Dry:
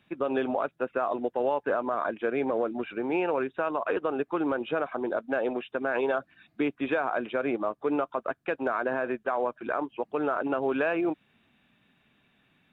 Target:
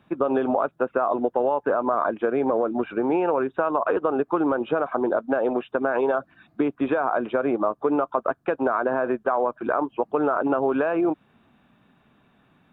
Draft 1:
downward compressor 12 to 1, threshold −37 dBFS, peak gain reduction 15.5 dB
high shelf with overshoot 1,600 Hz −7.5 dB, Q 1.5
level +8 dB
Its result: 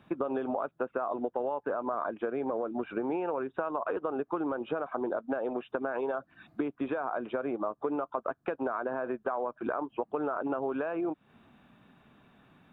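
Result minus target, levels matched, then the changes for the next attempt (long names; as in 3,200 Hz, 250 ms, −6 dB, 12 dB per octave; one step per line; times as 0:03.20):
downward compressor: peak gain reduction +10 dB
change: downward compressor 12 to 1, threshold −26 dBFS, peak gain reduction 5.5 dB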